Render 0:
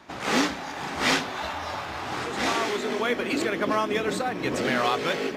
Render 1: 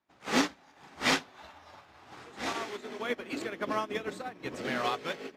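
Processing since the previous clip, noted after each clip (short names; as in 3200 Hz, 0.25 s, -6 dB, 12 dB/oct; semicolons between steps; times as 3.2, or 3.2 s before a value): upward expander 2.5:1, over -40 dBFS; gain -2 dB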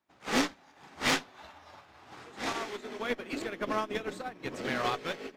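tube stage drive 23 dB, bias 0.65; gain +3.5 dB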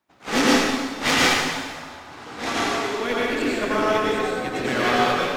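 plate-style reverb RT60 1.6 s, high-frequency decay 0.9×, pre-delay 80 ms, DRR -6 dB; gain +5.5 dB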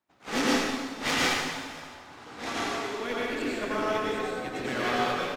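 echo 0.531 s -22.5 dB; gain -7.5 dB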